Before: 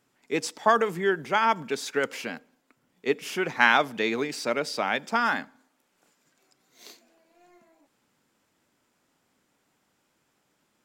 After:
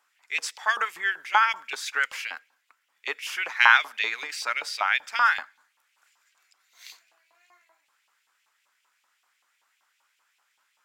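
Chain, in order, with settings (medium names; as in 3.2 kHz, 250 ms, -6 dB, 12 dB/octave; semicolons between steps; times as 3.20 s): LFO high-pass saw up 5.2 Hz 900–2800 Hz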